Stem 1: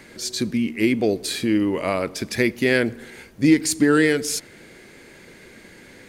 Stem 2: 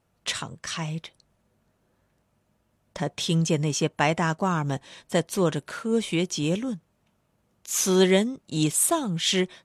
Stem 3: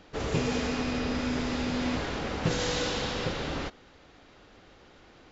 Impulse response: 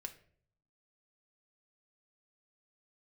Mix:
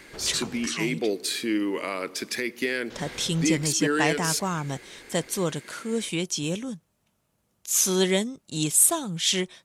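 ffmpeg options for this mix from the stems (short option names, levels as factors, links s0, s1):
-filter_complex "[0:a]highpass=330,equalizer=f=660:w=1.7:g=-7.5,volume=0.944[s0];[1:a]highshelf=f=4000:g=10,volume=0.631[s1];[2:a]acompressor=threshold=0.0112:ratio=6,volume=0.841,asplit=3[s2][s3][s4];[s2]atrim=end=0.66,asetpts=PTS-STARTPTS,afade=t=out:st=0.656:d=0.004:c=hsin[s5];[s3]atrim=start=0.66:end=2.9,asetpts=PTS-STARTPTS,volume=0[s6];[s4]atrim=start=2.9,asetpts=PTS-STARTPTS,afade=t=in:d=0.004:c=hsin[s7];[s5][s6][s7]concat=n=3:v=0:a=1[s8];[s0][s8]amix=inputs=2:normalize=0,alimiter=limit=0.168:level=0:latency=1:release=248,volume=1[s9];[s1][s9]amix=inputs=2:normalize=0"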